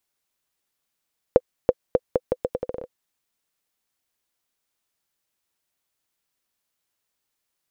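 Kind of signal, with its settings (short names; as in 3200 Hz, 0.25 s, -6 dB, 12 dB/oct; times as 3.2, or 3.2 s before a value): bouncing ball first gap 0.33 s, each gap 0.79, 505 Hz, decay 43 ms -1.5 dBFS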